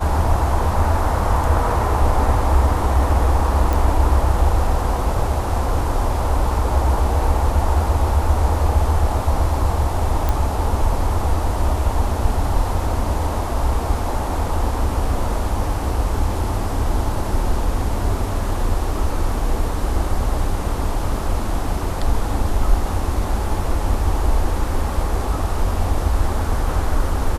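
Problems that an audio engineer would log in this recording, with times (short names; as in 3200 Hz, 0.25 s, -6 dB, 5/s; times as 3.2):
3.73 pop
10.29 pop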